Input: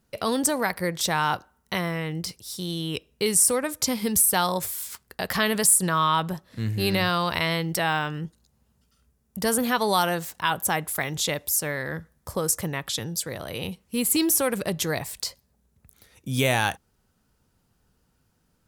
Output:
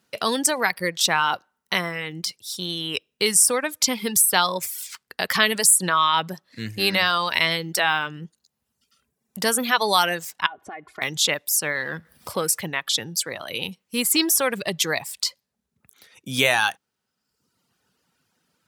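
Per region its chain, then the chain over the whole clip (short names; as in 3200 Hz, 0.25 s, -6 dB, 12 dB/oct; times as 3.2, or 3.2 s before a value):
10.46–11.02 LPF 1700 Hz + comb 2.8 ms, depth 67% + compressor, threshold -35 dBFS
11.75–12.6 G.711 law mismatch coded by mu + bell 6600 Hz -7.5 dB 0.34 oct + upward compressor, threshold -33 dBFS
whole clip: reverb removal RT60 0.93 s; HPF 160 Hz 12 dB/oct; bell 3000 Hz +8 dB 2.9 oct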